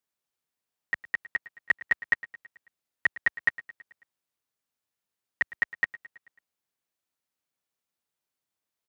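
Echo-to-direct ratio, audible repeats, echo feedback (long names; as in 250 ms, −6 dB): −17.0 dB, 4, 57%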